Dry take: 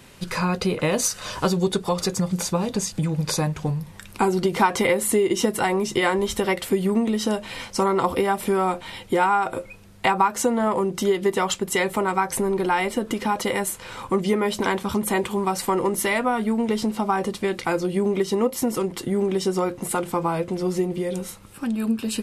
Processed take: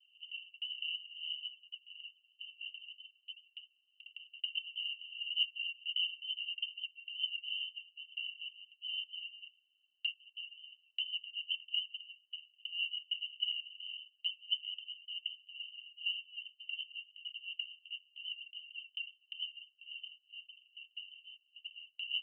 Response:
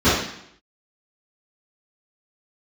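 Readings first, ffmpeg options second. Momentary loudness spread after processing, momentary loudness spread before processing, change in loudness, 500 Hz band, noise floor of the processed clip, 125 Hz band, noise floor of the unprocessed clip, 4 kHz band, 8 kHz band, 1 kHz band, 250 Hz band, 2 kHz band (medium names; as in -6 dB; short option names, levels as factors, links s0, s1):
15 LU, 6 LU, -16.5 dB, under -40 dB, -77 dBFS, under -40 dB, -43 dBFS, -2.0 dB, under -40 dB, under -40 dB, under -40 dB, -15.0 dB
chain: -af "alimiter=limit=0.141:level=0:latency=1:release=76,asuperpass=centerf=2900:order=20:qfactor=7.9,agate=range=0.251:threshold=0.001:ratio=16:detection=peak,volume=2.11"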